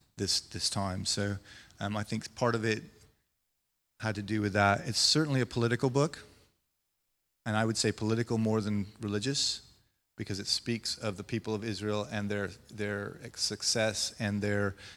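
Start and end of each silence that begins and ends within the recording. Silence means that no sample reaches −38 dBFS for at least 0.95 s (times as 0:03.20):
0:02.79–0:04.01
0:06.19–0:07.46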